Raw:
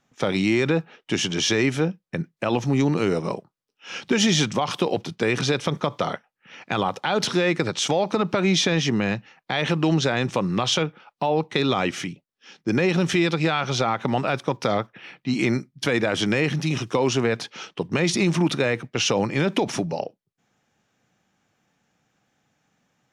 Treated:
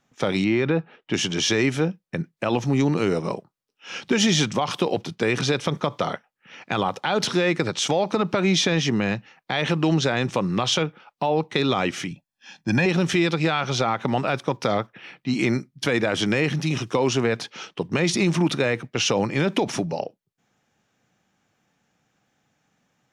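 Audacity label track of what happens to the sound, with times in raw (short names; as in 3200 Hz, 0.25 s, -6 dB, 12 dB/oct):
0.440000	1.140000	air absorption 210 m
12.110000	12.860000	comb 1.2 ms, depth 77%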